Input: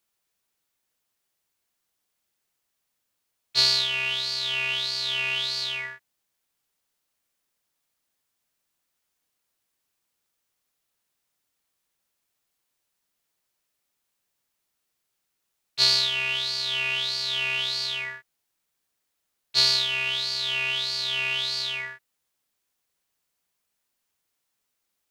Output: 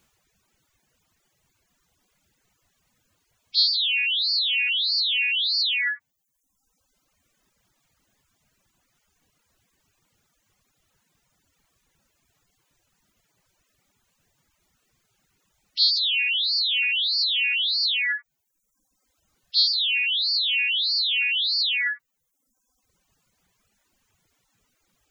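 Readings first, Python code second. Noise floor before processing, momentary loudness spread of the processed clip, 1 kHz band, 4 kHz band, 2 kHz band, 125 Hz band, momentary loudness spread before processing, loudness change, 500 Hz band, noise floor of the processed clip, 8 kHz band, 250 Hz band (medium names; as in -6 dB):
-79 dBFS, 6 LU, under -10 dB, +3.0 dB, +4.0 dB, under -25 dB, 10 LU, +3.0 dB, under -30 dB, -76 dBFS, under -15 dB, no reading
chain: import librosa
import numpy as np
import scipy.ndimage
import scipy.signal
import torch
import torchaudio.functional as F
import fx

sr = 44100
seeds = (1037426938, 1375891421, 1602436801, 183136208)

p1 = fx.dereverb_blind(x, sr, rt60_s=1.2)
p2 = fx.peak_eq(p1, sr, hz=6700.0, db=6.5, octaves=0.49)
p3 = fx.spec_gate(p2, sr, threshold_db=-15, keep='strong')
p4 = fx.bass_treble(p3, sr, bass_db=11, treble_db=-9)
p5 = fx.over_compress(p4, sr, threshold_db=-38.0, ratio=-0.5)
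p6 = p4 + (p5 * librosa.db_to_amplitude(0.0))
y = p6 * librosa.db_to_amplitude(6.0)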